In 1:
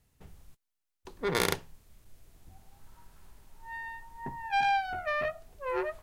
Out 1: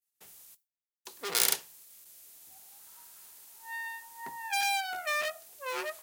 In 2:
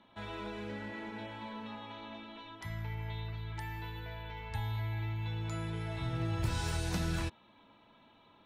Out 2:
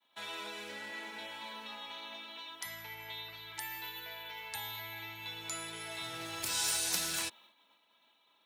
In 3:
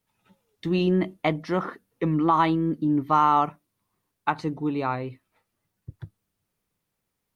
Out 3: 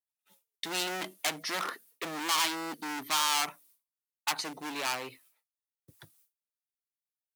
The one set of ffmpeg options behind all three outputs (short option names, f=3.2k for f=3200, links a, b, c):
-filter_complex "[0:a]agate=range=-33dB:threshold=-55dB:ratio=3:detection=peak,apsyclip=14dB,acrossover=split=180|830[a][b][c];[b]acontrast=25[d];[a][d][c]amix=inputs=3:normalize=0,asoftclip=type=hard:threshold=-12dB,aderivative"